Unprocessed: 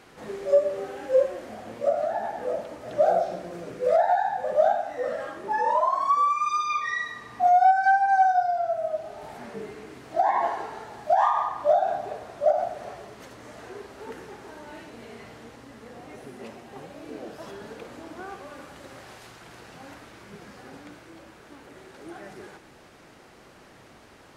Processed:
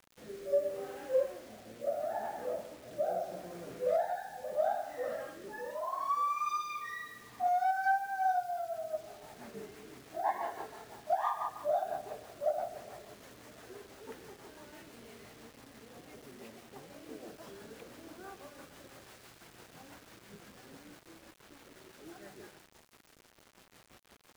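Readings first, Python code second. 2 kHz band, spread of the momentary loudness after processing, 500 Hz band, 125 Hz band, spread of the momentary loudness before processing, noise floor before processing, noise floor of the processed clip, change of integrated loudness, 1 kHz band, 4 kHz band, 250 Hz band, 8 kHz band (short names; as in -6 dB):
-10.5 dB, 21 LU, -10.0 dB, -9.0 dB, 22 LU, -52 dBFS, -63 dBFS, -11.5 dB, -11.5 dB, -7.5 dB, -9.0 dB, n/a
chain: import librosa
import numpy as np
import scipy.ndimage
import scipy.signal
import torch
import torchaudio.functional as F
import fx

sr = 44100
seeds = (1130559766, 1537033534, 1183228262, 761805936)

y = fx.rev_schroeder(x, sr, rt60_s=2.3, comb_ms=28, drr_db=18.5)
y = fx.rotary_switch(y, sr, hz=0.75, then_hz=6.0, switch_at_s=7.87)
y = fx.quant_dither(y, sr, seeds[0], bits=8, dither='none')
y = y * librosa.db_to_amplitude(-7.5)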